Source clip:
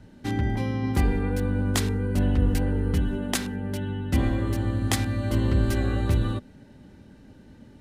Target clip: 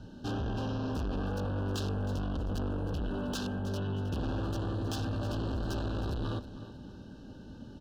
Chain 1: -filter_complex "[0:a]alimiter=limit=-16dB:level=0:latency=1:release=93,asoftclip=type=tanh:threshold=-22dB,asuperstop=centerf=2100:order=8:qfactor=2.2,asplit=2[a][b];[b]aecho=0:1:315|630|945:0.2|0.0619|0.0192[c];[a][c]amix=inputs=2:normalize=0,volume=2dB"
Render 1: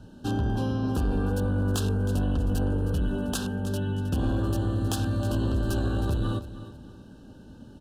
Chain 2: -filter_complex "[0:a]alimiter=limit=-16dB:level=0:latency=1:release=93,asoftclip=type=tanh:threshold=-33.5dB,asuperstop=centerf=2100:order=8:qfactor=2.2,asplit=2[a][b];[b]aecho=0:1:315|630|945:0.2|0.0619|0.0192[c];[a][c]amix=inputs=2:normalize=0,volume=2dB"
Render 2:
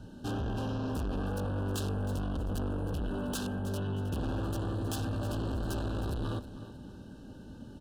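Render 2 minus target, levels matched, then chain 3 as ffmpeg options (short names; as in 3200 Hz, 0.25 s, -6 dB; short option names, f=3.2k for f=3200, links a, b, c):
8000 Hz band +4.0 dB
-filter_complex "[0:a]alimiter=limit=-16dB:level=0:latency=1:release=93,asoftclip=type=tanh:threshold=-33.5dB,asuperstop=centerf=2100:order=8:qfactor=2.2,highshelf=f=7k:t=q:w=1.5:g=-7.5,asplit=2[a][b];[b]aecho=0:1:315|630|945:0.2|0.0619|0.0192[c];[a][c]amix=inputs=2:normalize=0,volume=2dB"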